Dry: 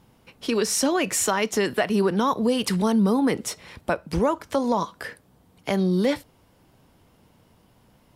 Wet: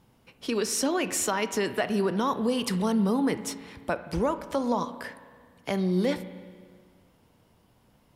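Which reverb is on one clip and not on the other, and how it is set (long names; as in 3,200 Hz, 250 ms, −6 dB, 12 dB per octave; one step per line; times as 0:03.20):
spring reverb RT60 1.8 s, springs 33/58 ms, chirp 30 ms, DRR 12 dB
level −4.5 dB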